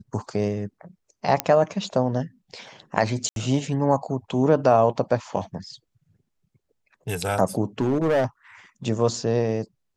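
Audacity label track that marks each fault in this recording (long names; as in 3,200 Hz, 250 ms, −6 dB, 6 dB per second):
1.400000	1.400000	click −5 dBFS
3.290000	3.360000	drop-out 72 ms
7.800000	8.250000	clipping −17 dBFS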